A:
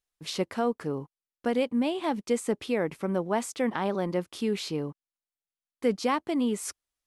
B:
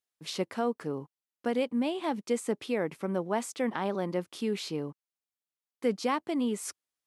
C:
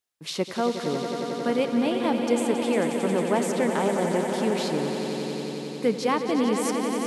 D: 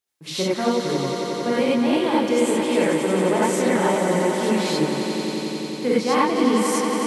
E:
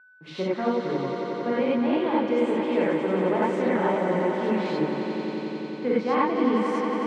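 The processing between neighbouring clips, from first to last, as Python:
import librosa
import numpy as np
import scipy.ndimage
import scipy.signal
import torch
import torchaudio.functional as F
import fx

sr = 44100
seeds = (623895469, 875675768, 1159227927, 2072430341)

y1 = scipy.signal.sosfilt(scipy.signal.butter(2, 120.0, 'highpass', fs=sr, output='sos'), x)
y1 = y1 * 10.0 ** (-2.5 / 20.0)
y2 = fx.echo_swell(y1, sr, ms=90, loudest=5, wet_db=-9.5)
y2 = y2 * 10.0 ** (4.5 / 20.0)
y3 = fx.rev_gated(y2, sr, seeds[0], gate_ms=120, shape='rising', drr_db=-6.0)
y3 = y3 * 10.0 ** (-1.5 / 20.0)
y4 = y3 + 10.0 ** (-48.0 / 20.0) * np.sin(2.0 * np.pi * 1500.0 * np.arange(len(y3)) / sr)
y4 = fx.bandpass_edges(y4, sr, low_hz=140.0, high_hz=2300.0)
y4 = y4 * 10.0 ** (-3.5 / 20.0)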